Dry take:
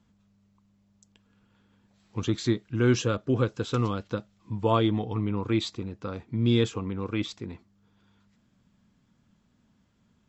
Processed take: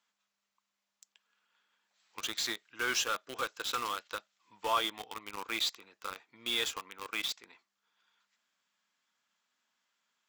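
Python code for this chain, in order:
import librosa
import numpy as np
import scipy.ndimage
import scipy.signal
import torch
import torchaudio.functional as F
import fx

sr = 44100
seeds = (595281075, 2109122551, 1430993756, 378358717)

p1 = scipy.signal.sosfilt(scipy.signal.butter(2, 1200.0, 'highpass', fs=sr, output='sos'), x)
p2 = fx.quant_companded(p1, sr, bits=2)
p3 = p1 + (p2 * 10.0 ** (-8.0 / 20.0))
y = p3 * 10.0 ** (-2.0 / 20.0)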